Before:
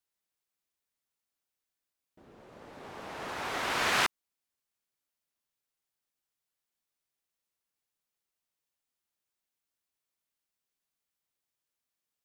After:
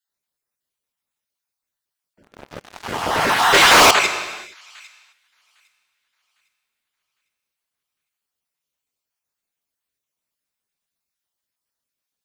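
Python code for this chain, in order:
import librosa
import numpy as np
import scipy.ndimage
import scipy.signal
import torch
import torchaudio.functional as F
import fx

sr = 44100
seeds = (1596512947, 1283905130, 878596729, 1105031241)

y = fx.spec_dropout(x, sr, seeds[0], share_pct=35)
y = fx.echo_wet_highpass(y, sr, ms=805, feedback_pct=36, hz=1900.0, wet_db=-23)
y = fx.rev_gated(y, sr, seeds[1], gate_ms=490, shape='falling', drr_db=3.0)
y = fx.spec_box(y, sr, start_s=3.53, length_s=1.6, low_hz=280.0, high_hz=8100.0, gain_db=8)
y = fx.leveller(y, sr, passes=5, at=(2.23, 3.91))
y = F.gain(torch.from_numpy(y), 4.0).numpy()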